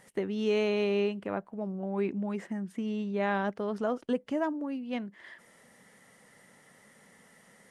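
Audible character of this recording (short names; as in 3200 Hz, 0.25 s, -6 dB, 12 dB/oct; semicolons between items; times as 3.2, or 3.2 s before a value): noise floor -60 dBFS; spectral tilt -5.0 dB/oct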